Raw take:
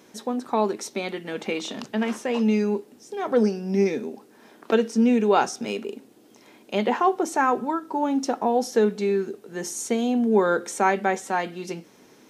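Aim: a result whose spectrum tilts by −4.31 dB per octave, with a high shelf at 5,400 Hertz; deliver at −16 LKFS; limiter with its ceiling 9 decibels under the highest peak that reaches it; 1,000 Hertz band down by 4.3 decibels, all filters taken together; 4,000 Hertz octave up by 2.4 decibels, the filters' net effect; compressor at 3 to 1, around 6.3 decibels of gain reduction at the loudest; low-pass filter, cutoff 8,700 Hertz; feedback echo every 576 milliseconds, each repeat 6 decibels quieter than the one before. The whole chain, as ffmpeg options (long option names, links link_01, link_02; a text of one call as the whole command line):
ffmpeg -i in.wav -af "lowpass=8700,equalizer=frequency=1000:width_type=o:gain=-6,equalizer=frequency=4000:width_type=o:gain=5.5,highshelf=frequency=5400:gain=-4,acompressor=threshold=-24dB:ratio=3,alimiter=limit=-21.5dB:level=0:latency=1,aecho=1:1:576|1152|1728|2304|2880|3456:0.501|0.251|0.125|0.0626|0.0313|0.0157,volume=14.5dB" out.wav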